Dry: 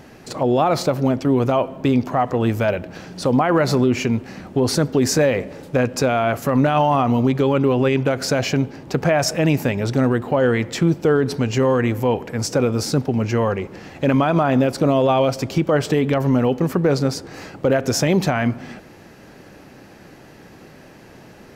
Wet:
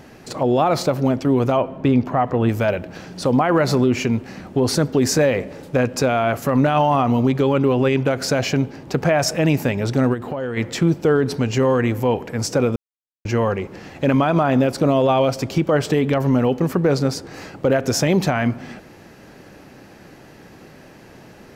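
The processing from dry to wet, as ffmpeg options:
-filter_complex "[0:a]asettb=1/sr,asplit=3[a][b][c];[a]atrim=end=1.574[d];[b]atrim=start=1.57:end=2.49,asetpts=PTS-STARTPTS,afade=t=in:d=0.004:c=qsin,afade=t=out:st=0.916:d=0.004:c=qsin,bass=f=250:g=2,treble=f=4k:g=-10[e];[c]atrim=start=2.486[f];[d][e]acrossfade=d=0.004:c1=hsin:c2=qsin[g];[g][f]acrossfade=d=0.004:c1=qsin:c2=hsin,asplit=3[h][i][j];[h]afade=t=out:st=10.13:d=0.02[k];[i]acompressor=threshold=-22dB:ratio=6:attack=3.2:release=140:knee=1:detection=peak,afade=t=in:st=10.13:d=0.02,afade=t=out:st=10.56:d=0.02[l];[j]afade=t=in:st=10.56:d=0.02[m];[k][l][m]amix=inputs=3:normalize=0,asplit=3[n][o][p];[n]atrim=end=12.76,asetpts=PTS-STARTPTS,afade=t=out:st=12.756:d=0.004:c=hsin[q];[o]atrim=start=12.76:end=13.25,asetpts=PTS-STARTPTS,volume=0[r];[p]atrim=start=13.25,asetpts=PTS-STARTPTS,afade=t=in:d=0.004:c=hsin[s];[q][r][s]concat=n=3:v=0:a=1"

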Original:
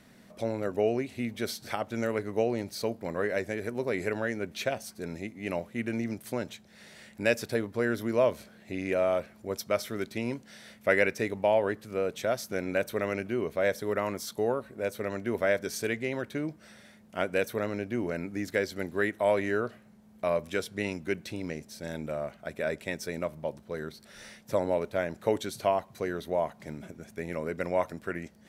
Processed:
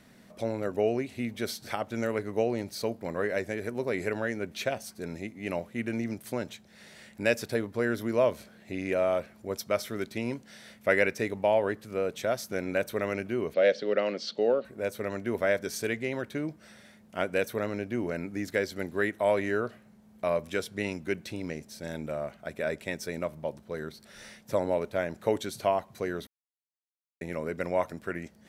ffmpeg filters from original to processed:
-filter_complex "[0:a]asettb=1/sr,asplit=3[a][b][c];[a]atrim=end=13.544[d];[b]atrim=start=13.54:end=14.65,asetpts=PTS-STARTPTS,afade=t=in:d=0.004:c=qsin,afade=t=out:st=1.106:d=0.004:c=qsin,highpass=f=170:w=0.5412,highpass=f=170:w=1.3066,equalizer=f=530:t=q:w=4:g=8,equalizer=f=1k:t=q:w=4:g=-10,equalizer=f=2.9k:t=q:w=4:g=9,equalizer=f=4.5k:t=q:w=4:g=9,lowpass=f=5.2k:w=0.5412,lowpass=f=5.2k:w=1.3066[e];[c]atrim=start=14.646[f];[d][e]acrossfade=d=0.004:c1=hsin:c2=qsin[g];[g][f]acrossfade=d=0.004:c1=qsin:c2=hsin,asplit=3[h][i][j];[h]atrim=end=26.27,asetpts=PTS-STARTPTS,afade=t=out:st=26.266:d=0.004:c=hsin[k];[i]atrim=start=26.27:end=27.21,asetpts=PTS-STARTPTS,volume=0[l];[j]atrim=start=27.21,asetpts=PTS-STARTPTS,afade=t=in:d=0.004:c=hsin[m];[k][l][m]concat=n=3:v=0:a=1"

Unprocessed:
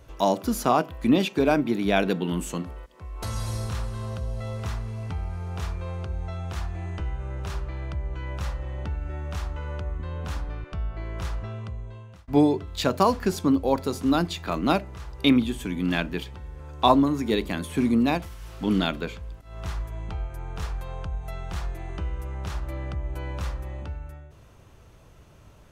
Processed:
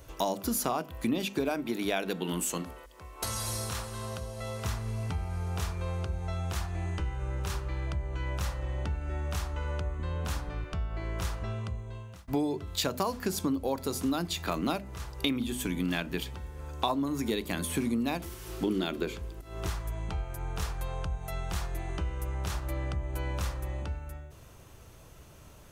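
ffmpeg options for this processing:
-filter_complex "[0:a]asettb=1/sr,asplit=3[a][b][c];[a]atrim=end=1.494[d];[b]atrim=start=1.49:end=4.65,asetpts=PTS-STARTPTS,afade=t=in:d=0.004:c=qsin,afade=t=out:st=3.156:d=0.004:c=qsin,lowshelf=f=210:g=-9[e];[c]atrim=start=4.646[f];[d][e]acrossfade=d=0.004:c1=hsin:c2=qsin[g];[g][f]acrossfade=d=0.004:c1=qsin:c2=hsin,asettb=1/sr,asplit=3[h][i][j];[h]atrim=end=6.944[k];[i]atrim=start=6.94:end=7.87,asetpts=PTS-STARTPTS,afade=t=in:d=0.004:c=qsin,afade=t=out:st=0.926:d=0.004:c=qsin,asuperstop=centerf=660:order=4:qfactor=7.7[l];[j]atrim=start=7.866[m];[k][l]acrossfade=d=0.004:c1=hsin:c2=qsin[n];[n][m]acrossfade=d=0.004:c1=qsin:c2=hsin,asettb=1/sr,asplit=3[o][p][q];[o]atrim=end=18.204[r];[p]atrim=start=18.2:end=19.69,asetpts=PTS-STARTPTS,afade=t=in:d=0.004:c=qsin,afade=t=out:st=1.486:d=0.004:c=qsin,equalizer=f=360:t=o:w=0.37:g=14.5[s];[q]atrim=start=19.686[t];[r][s]acrossfade=d=0.004:c1=hsin:c2=qsin[u];[u][t]acrossfade=d=0.004:c1=qsin:c2=hsin,highshelf=f=6.6k:g=11.5,bandreject=f=50:t=h:w=6,bandreject=f=100:t=h:w=6,bandreject=f=150:t=h:w=6,bandreject=f=200:t=h:w=6,bandreject=f=250:t=h:w=6,acompressor=threshold=-27dB:ratio=5"

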